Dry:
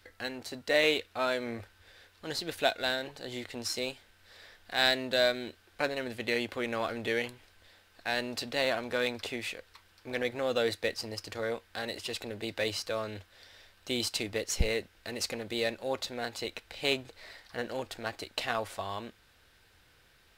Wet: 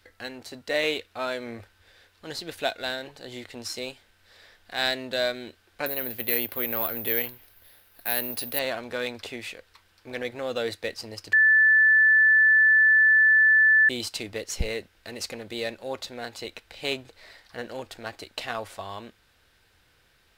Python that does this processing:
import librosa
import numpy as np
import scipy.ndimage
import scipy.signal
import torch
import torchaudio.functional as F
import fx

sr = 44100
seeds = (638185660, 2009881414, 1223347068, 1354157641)

y = fx.resample_bad(x, sr, factor=3, down='filtered', up='zero_stuff', at=(5.86, 8.59))
y = fx.edit(y, sr, fx.bleep(start_s=11.33, length_s=2.56, hz=1750.0, db=-14.5), tone=tone)